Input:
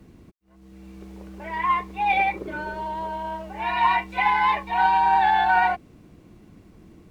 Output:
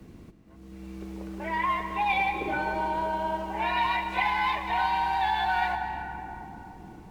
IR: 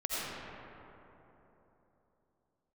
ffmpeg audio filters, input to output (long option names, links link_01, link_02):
-filter_complex "[0:a]acrossover=split=170|3000[link_01][link_02][link_03];[link_02]acompressor=threshold=-27dB:ratio=6[link_04];[link_01][link_04][link_03]amix=inputs=3:normalize=0,asplit=2[link_05][link_06];[1:a]atrim=start_sample=2205,adelay=125[link_07];[link_06][link_07]afir=irnorm=-1:irlink=0,volume=-13.5dB[link_08];[link_05][link_08]amix=inputs=2:normalize=0,volume=1.5dB"